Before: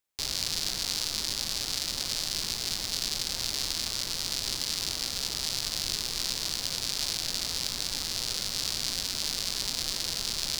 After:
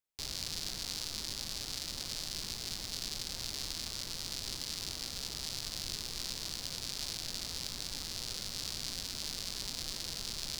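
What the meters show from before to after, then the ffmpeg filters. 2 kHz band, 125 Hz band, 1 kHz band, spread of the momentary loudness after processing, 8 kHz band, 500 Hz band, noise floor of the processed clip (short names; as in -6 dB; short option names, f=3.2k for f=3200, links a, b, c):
-8.5 dB, -4.0 dB, -8.0 dB, 1 LU, -8.5 dB, -7.0 dB, -43 dBFS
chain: -af "lowshelf=f=340:g=5,volume=-8.5dB"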